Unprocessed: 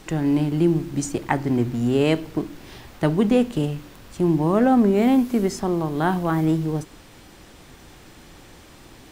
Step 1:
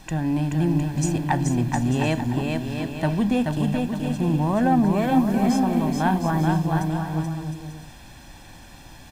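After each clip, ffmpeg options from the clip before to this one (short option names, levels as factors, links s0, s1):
-filter_complex "[0:a]aecho=1:1:1.2:0.64,asoftclip=type=tanh:threshold=0.398,asplit=2[s0][s1];[s1]aecho=0:1:430|709.5|891.2|1009|1086:0.631|0.398|0.251|0.158|0.1[s2];[s0][s2]amix=inputs=2:normalize=0,volume=0.75"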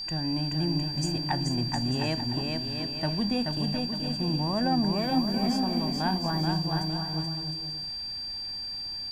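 -af "aeval=exprs='val(0)+0.0501*sin(2*PI*4700*n/s)':c=same,volume=0.447"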